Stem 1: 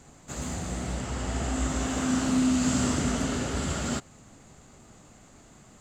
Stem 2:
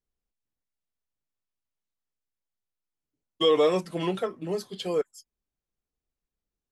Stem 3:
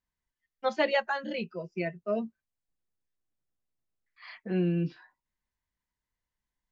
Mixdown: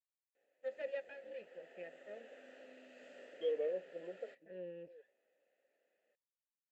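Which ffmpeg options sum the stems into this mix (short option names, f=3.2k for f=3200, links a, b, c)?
-filter_complex "[0:a]highpass=440,adelay=350,volume=-10.5dB[a];[1:a]afwtdn=0.02,volume=-8dB[b];[2:a]aeval=exprs='max(val(0),0)':c=same,volume=-4dB,asplit=2[c][d];[d]apad=whole_len=296258[e];[b][e]sidechaincompress=threshold=-52dB:ratio=8:attack=11:release=799[f];[a][f][c]amix=inputs=3:normalize=0,asplit=3[g][h][i];[g]bandpass=f=530:t=q:w=8,volume=0dB[j];[h]bandpass=f=1.84k:t=q:w=8,volume=-6dB[k];[i]bandpass=f=2.48k:t=q:w=8,volume=-9dB[l];[j][k][l]amix=inputs=3:normalize=0,highshelf=f=5.2k:g=-11"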